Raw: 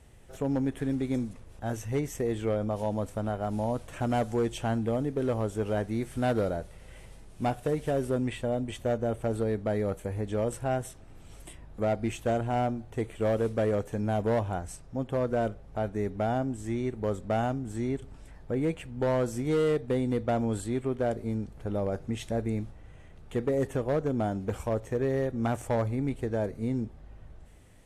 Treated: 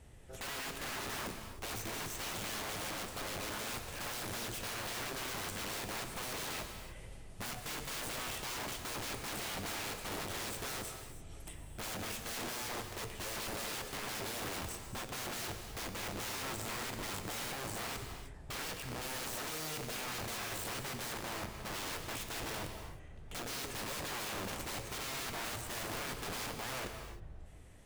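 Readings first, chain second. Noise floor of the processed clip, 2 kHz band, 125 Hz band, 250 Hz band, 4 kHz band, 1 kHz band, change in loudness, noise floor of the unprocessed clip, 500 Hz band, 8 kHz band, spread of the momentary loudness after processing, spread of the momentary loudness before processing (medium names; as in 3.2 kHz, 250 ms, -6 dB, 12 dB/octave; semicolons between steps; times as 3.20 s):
-49 dBFS, +1.5 dB, -15.5 dB, -17.0 dB, +8.0 dB, -7.5 dB, -9.0 dB, -50 dBFS, -17.0 dB, +7.0 dB, 6 LU, 7 LU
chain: integer overflow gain 34.5 dB; gated-style reverb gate 340 ms flat, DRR 5.5 dB; trim -2 dB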